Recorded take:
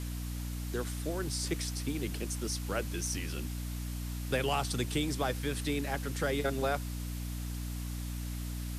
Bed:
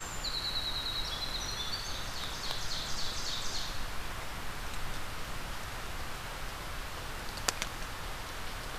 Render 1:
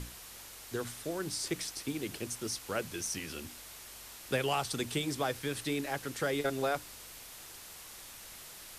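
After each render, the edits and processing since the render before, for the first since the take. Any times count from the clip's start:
mains-hum notches 60/120/180/240/300 Hz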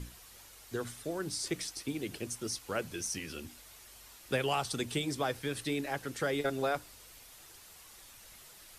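broadband denoise 7 dB, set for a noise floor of −50 dBFS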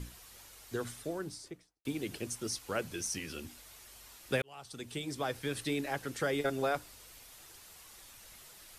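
0:00.94–0:01.85: fade out and dull
0:04.42–0:05.51: fade in linear
0:06.22–0:06.74: notch filter 3,900 Hz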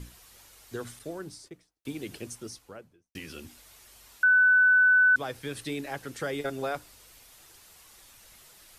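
0:00.99–0:01.51: downward expander −52 dBFS
0:02.16–0:03.15: fade out and dull
0:04.23–0:05.16: beep over 1,500 Hz −16.5 dBFS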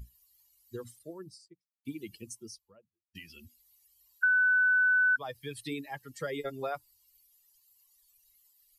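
spectral dynamics exaggerated over time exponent 2
downward compressor, threshold −23 dBFS, peak gain reduction 4.5 dB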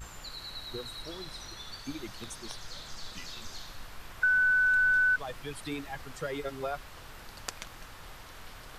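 mix in bed −7.5 dB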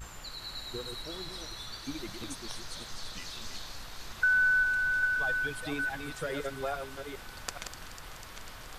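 delay that plays each chunk backwards 421 ms, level −6 dB
delay with a high-pass on its return 248 ms, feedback 81%, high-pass 3,300 Hz, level −10.5 dB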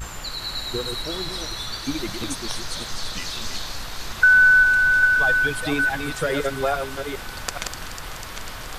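level +11.5 dB
brickwall limiter −2 dBFS, peak gain reduction 3 dB

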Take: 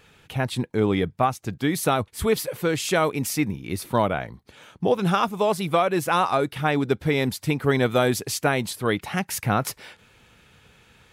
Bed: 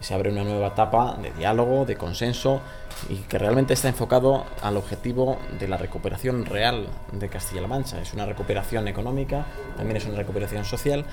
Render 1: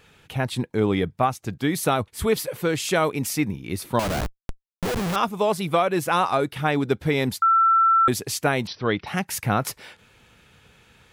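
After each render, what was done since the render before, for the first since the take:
0:03.99–0:05.16: comparator with hysteresis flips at −31.5 dBFS
0:07.42–0:08.08: beep over 1,340 Hz −14 dBFS
0:08.67–0:09.07: linear-phase brick-wall low-pass 6,000 Hz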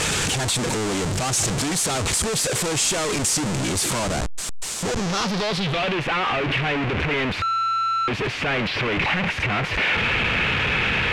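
sign of each sample alone
low-pass filter sweep 7,900 Hz → 2,500 Hz, 0:04.82–0:06.05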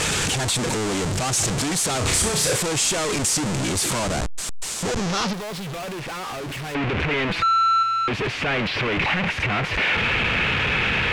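0:01.98–0:02.56: flutter between parallel walls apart 5.6 metres, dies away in 0.46 s
0:05.33–0:06.75: hard clipping −30.5 dBFS
0:07.27–0:07.83: comb filter 6 ms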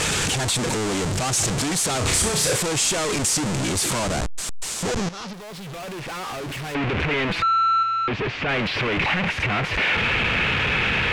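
0:05.09–0:06.19: fade in, from −14 dB
0:07.42–0:08.49: high-frequency loss of the air 130 metres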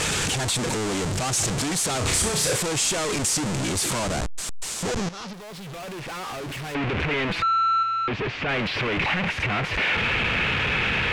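level −2 dB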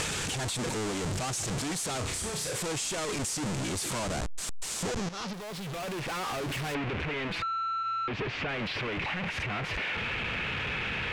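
brickwall limiter −21.5 dBFS, peak gain reduction 9.5 dB
downward compressor 4 to 1, threshold −31 dBFS, peak gain reduction 6.5 dB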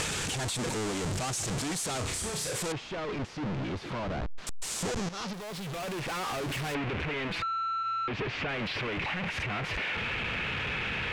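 0:02.72–0:04.47: high-frequency loss of the air 300 metres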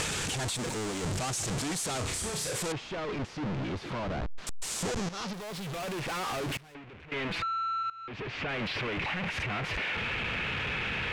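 0:00.56–0:01.03: mu-law and A-law mismatch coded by A
0:06.57–0:07.12: downward expander −23 dBFS
0:07.90–0:08.55: fade in, from −18.5 dB

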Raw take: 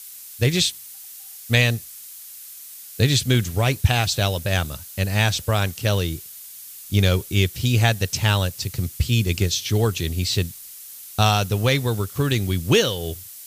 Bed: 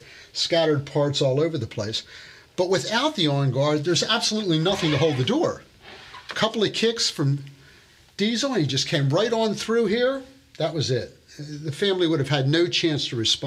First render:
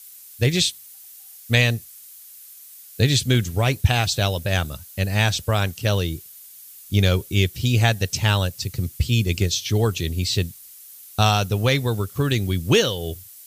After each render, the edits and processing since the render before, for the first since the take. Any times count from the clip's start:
broadband denoise 6 dB, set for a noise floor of −40 dBFS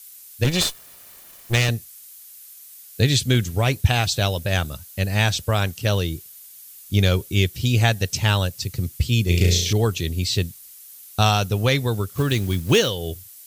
0:00.44–0:01.69: lower of the sound and its delayed copy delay 1.7 ms
0:09.25–0:09.73: flutter between parallel walls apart 5.9 metres, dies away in 0.71 s
0:12.18–0:12.90: one scale factor per block 5 bits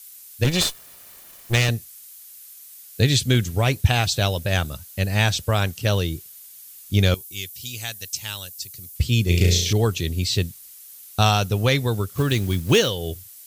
0:07.14–0:08.96: first-order pre-emphasis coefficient 0.9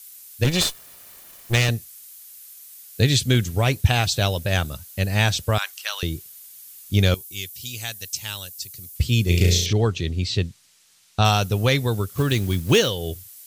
0:05.58–0:06.03: high-pass filter 990 Hz 24 dB per octave
0:09.66–0:11.25: high-frequency loss of the air 94 metres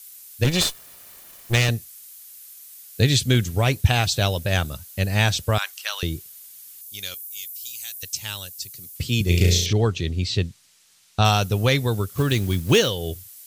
0:06.81–0:08.03: first-order pre-emphasis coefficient 0.97
0:08.69–0:09.21: high-pass filter 130 Hz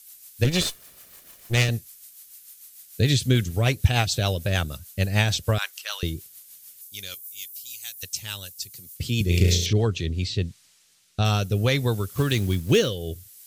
rotating-speaker cabinet horn 6.7 Hz, later 0.6 Hz, at 0:09.74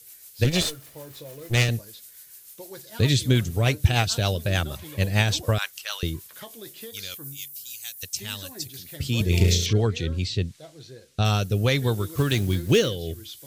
mix in bed −20.5 dB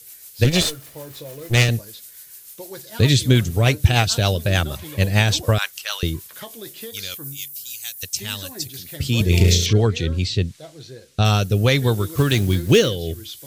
level +5 dB
brickwall limiter −2 dBFS, peak gain reduction 1.5 dB

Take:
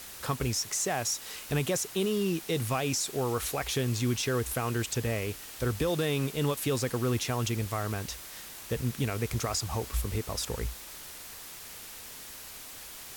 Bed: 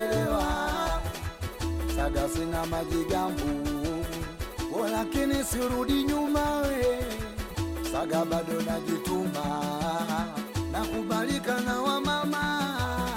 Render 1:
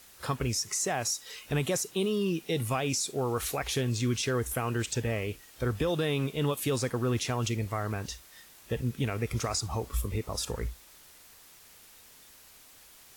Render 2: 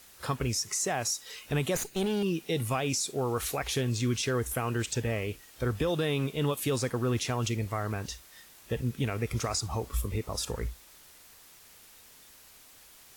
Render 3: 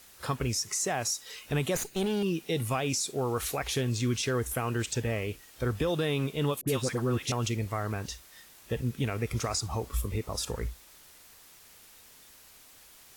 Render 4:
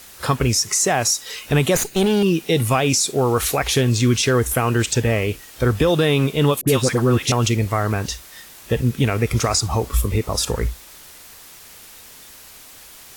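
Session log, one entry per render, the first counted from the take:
noise reduction from a noise print 10 dB
0:01.75–0:02.23: lower of the sound and its delayed copy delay 0.46 ms
0:06.61–0:07.32: all-pass dispersion highs, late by 65 ms, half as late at 970 Hz
level +12 dB

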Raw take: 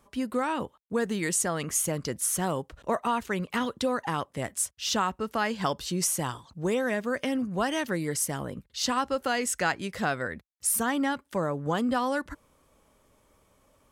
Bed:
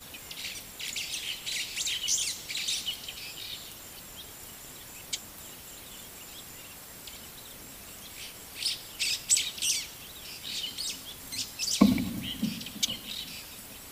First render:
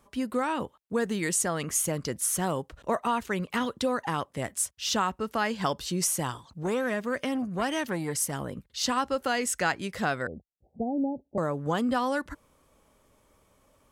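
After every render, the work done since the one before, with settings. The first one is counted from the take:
0:06.63–0:08.33: saturating transformer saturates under 610 Hz
0:10.27–0:11.38: Butterworth low-pass 790 Hz 96 dB per octave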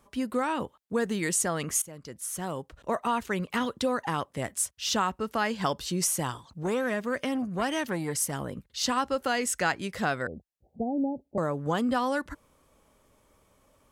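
0:01.82–0:03.17: fade in, from −18 dB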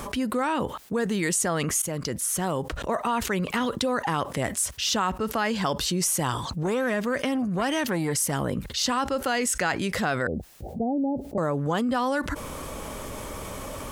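envelope flattener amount 70%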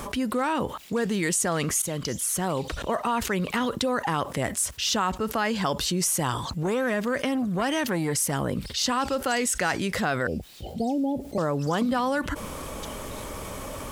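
mix in bed −15.5 dB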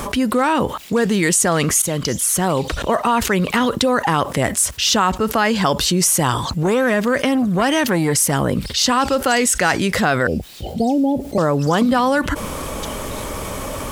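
level +9 dB
brickwall limiter −3 dBFS, peak gain reduction 1 dB

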